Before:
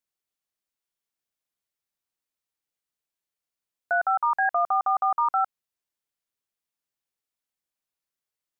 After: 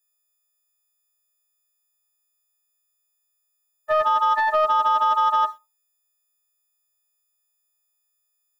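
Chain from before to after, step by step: frequency quantiser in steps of 6 st; reverb RT60 0.30 s, pre-delay 3 ms, DRR 9 dB; sample leveller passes 1

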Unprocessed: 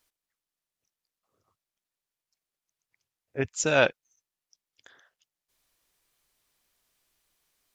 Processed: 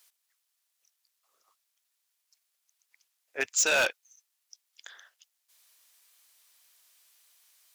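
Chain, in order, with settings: HPF 700 Hz 12 dB/oct; high shelf 2400 Hz +8.5 dB; in parallel at +1.5 dB: limiter -15 dBFS, peak gain reduction 9.5 dB; on the sum: overloaded stage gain 17 dB; gain -3 dB

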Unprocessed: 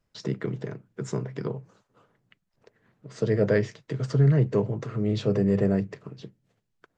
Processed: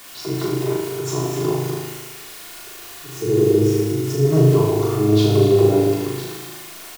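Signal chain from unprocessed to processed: fixed phaser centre 350 Hz, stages 8; in parallel at -1 dB: limiter -24 dBFS, peak gain reduction 11.5 dB; on the sum: spectral delete 1.94–4.24, 480–5000 Hz; added noise white -46 dBFS; on a send: echo 0.247 s -8.5 dB; on the sum: transient shaper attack -6 dB, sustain +3 dB; tone controls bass -6 dB, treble -4 dB; comb 2.8 ms, depth 41%; flutter echo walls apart 6.5 m, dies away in 1.1 s; gain +6 dB

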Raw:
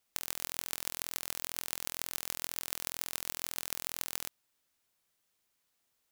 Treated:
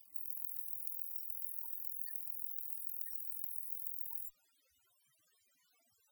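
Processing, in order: added harmonics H 5 -24 dB, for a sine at -4.5 dBFS; loudest bins only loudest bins 16; pre-echo 0.295 s -19 dB; gain +15.5 dB

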